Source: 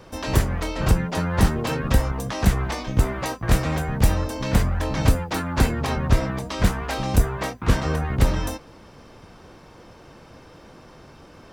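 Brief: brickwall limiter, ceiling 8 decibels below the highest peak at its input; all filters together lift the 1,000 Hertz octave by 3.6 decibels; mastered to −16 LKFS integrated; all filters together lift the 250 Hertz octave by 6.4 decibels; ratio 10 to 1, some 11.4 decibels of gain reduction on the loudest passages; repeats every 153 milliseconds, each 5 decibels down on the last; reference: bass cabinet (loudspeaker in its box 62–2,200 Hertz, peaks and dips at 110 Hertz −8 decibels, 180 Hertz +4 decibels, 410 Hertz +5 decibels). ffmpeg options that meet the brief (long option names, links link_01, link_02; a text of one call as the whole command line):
ffmpeg -i in.wav -af "equalizer=frequency=250:width_type=o:gain=6.5,equalizer=frequency=1000:width_type=o:gain=4,acompressor=threshold=-21dB:ratio=10,alimiter=limit=-18dB:level=0:latency=1,highpass=frequency=62:width=0.5412,highpass=frequency=62:width=1.3066,equalizer=frequency=110:width_type=q:width=4:gain=-8,equalizer=frequency=180:width_type=q:width=4:gain=4,equalizer=frequency=410:width_type=q:width=4:gain=5,lowpass=frequency=2200:width=0.5412,lowpass=frequency=2200:width=1.3066,aecho=1:1:153|306|459|612|765|918|1071:0.562|0.315|0.176|0.0988|0.0553|0.031|0.0173,volume=11dB" out.wav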